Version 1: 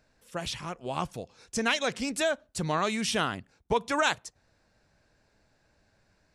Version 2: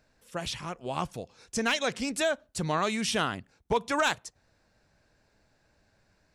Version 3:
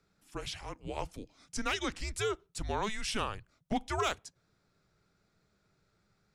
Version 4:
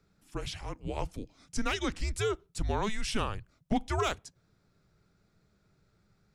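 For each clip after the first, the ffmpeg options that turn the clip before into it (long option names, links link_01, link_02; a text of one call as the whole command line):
ffmpeg -i in.wav -af "asoftclip=type=hard:threshold=-17dB" out.wav
ffmpeg -i in.wav -af "afreqshift=-210,volume=-5.5dB" out.wav
ffmpeg -i in.wav -af "lowshelf=frequency=330:gain=7" out.wav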